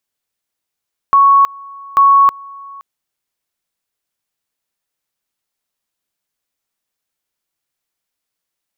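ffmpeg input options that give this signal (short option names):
-f lavfi -i "aevalsrc='pow(10,(-5-25*gte(mod(t,0.84),0.32))/20)*sin(2*PI*1110*t)':d=1.68:s=44100"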